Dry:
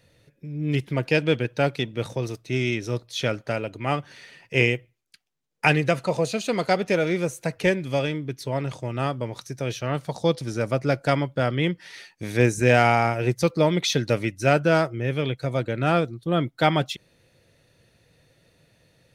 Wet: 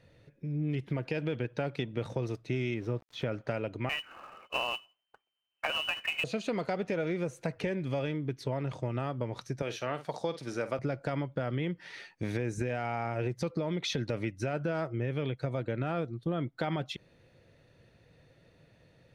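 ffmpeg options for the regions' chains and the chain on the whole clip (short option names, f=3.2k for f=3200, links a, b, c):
-filter_complex "[0:a]asettb=1/sr,asplit=3[a][b][c];[a]atrim=end=2.744[d];[b]atrim=start=2.74:end=3.32,asetpts=PTS-STARTPTS,afade=t=in:d=0.004:c=qsin,afade=t=out:st=0.576:d=0.004:c=qsin,lowpass=f=1.6k:p=1,aeval=exprs='val(0)*gte(abs(val(0)),0.00501)':c=same[e];[c]atrim=start=3.316[f];[d][e]acrossfade=d=0.004:c1=hsin:c2=qsin[g];[g][f]acrossfade=d=0.004:c1=qsin:c2=hsin,asettb=1/sr,asplit=3[h][i][j];[h]atrim=end=3.894[k];[i]atrim=start=3.89:end=6.24,asetpts=PTS-STARTPTS,afade=t=in:d=0.004:c=qsin,afade=t=out:st=2.346:d=0.004:c=qsin,lowpass=f=2.6k:t=q:w=0.5098,lowpass=f=2.6k:t=q:w=0.6013,lowpass=f=2.6k:t=q:w=0.9,lowpass=f=2.6k:t=q:w=2.563,afreqshift=-3100,acrusher=bits=2:mode=log:mix=0:aa=0.000001[l];[j]atrim=start=6.236[m];[k][l]acrossfade=d=0.004:c1=hsin:c2=qsin[n];[n][m]acrossfade=d=0.004:c1=qsin:c2=hsin,asettb=1/sr,asplit=3[o][p][q];[o]atrim=end=9.624[r];[p]atrim=start=9.62:end=10.79,asetpts=PTS-STARTPTS,afade=t=in:d=0.004:c=qsin,afade=t=out:st=1.166:d=0.004:c=qsin,highpass=f=520:p=1,highshelf=f=10k:g=6,asplit=2[s][t];[t]adelay=49,volume=-13.5dB[u];[s][u]amix=inputs=2:normalize=0,atrim=end_sample=51597[v];[q]atrim=start=10.786[w];[r][v]acrossfade=d=0.004:c1=hsin:c2=qsin[x];[x][w]acrossfade=d=0.004:c1=qsin:c2=hsin,aemphasis=mode=reproduction:type=75kf,alimiter=limit=-16.5dB:level=0:latency=1:release=52,acompressor=threshold=-29dB:ratio=5"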